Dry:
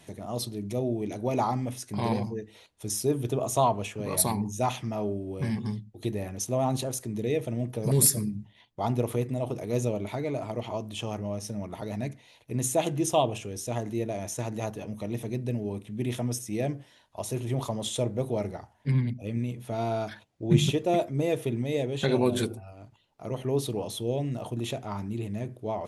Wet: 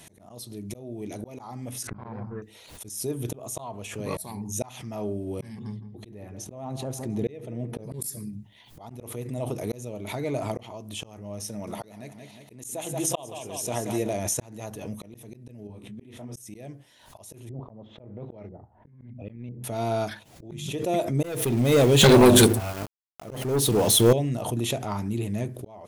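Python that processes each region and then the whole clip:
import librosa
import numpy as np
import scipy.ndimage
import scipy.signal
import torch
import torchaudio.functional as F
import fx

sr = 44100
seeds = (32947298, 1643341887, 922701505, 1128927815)

y = fx.chain(x, sr, fx.law_mismatch(coded='A'),
    fx.lowpass_res(hz=1400.0, q=4.3),
    fx.low_shelf(hz=110.0, db=11.0), at=(1.87, 2.42))
y = fx.chain(y, sr, fx.lowpass(hz=2200.0, slope=6),
    fx.echo_filtered(ms=166, feedback_pct=52, hz=1200.0, wet_db=-13.5), at=(5.59, 8.02))
y = fx.chain(y, sr, fx.low_shelf(hz=140.0, db=-10.0),
    fx.echo_feedback(ms=180, feedback_pct=43, wet_db=-9.5), at=(11.49, 14.13))
y = fx.chain(y, sr, fx.lowpass(hz=2700.0, slope=6),
    fx.detune_double(cents=37), at=(15.67, 16.36))
y = fx.chain(y, sr, fx.over_compress(threshold_db=-29.0, ratio=-0.5),
    fx.filter_lfo_lowpass(shape='saw_up', hz=1.0, low_hz=430.0, high_hz=6200.0, q=0.73),
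    fx.air_absorb(metres=250.0), at=(17.49, 19.64))
y = fx.chain(y, sr, fx.leveller(passes=3),
    fx.sample_gate(floor_db=-39.0), at=(21.23, 24.13))
y = fx.high_shelf(y, sr, hz=7500.0, db=10.0)
y = fx.auto_swell(y, sr, attack_ms=753.0)
y = fx.pre_swell(y, sr, db_per_s=68.0)
y = y * 10.0 ** (4.0 / 20.0)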